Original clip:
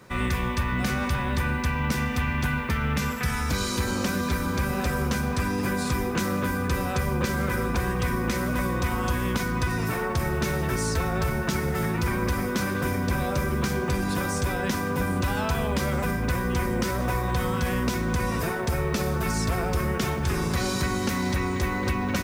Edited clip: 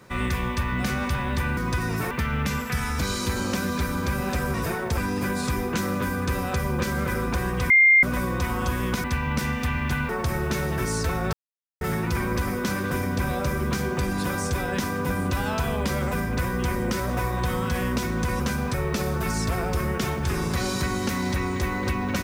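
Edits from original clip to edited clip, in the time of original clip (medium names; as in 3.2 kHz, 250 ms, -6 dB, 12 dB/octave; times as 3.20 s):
1.57–2.62 s: swap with 9.46–10.00 s
5.05–5.39 s: swap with 18.31–18.74 s
8.12–8.45 s: bleep 2.11 kHz -12 dBFS
11.24–11.72 s: mute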